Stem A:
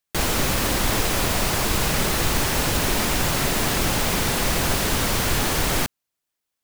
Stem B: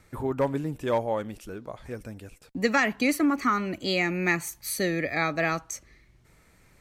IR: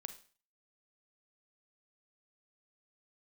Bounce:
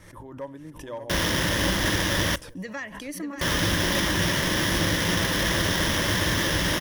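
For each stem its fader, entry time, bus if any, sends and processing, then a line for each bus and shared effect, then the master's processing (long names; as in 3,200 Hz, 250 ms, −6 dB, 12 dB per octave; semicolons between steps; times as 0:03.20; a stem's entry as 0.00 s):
−2.0 dB, 0.95 s, muted 0:02.36–0:03.41, send −14 dB, no echo send, lower of the sound and its delayed copy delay 0.54 ms; high-pass filter 56 Hz; sample-rate reduction 8,800 Hz, jitter 20%
−13.5 dB, 0.00 s, no send, echo send −8 dB, background raised ahead of every attack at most 49 dB per second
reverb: on, RT60 0.40 s, pre-delay 34 ms
echo: repeating echo 587 ms, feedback 46%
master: EQ curve with evenly spaced ripples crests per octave 1.2, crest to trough 8 dB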